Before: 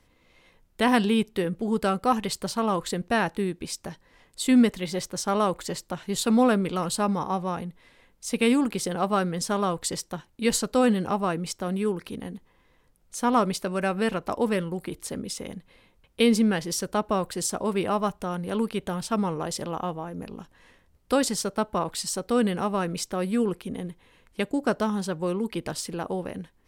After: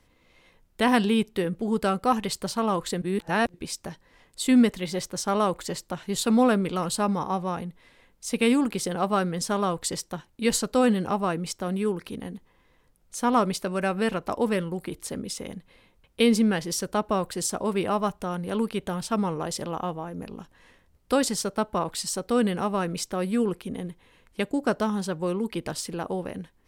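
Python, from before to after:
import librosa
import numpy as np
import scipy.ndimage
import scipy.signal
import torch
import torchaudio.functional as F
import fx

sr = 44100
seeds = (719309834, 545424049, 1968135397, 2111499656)

y = fx.edit(x, sr, fx.reverse_span(start_s=3.03, length_s=0.51), tone=tone)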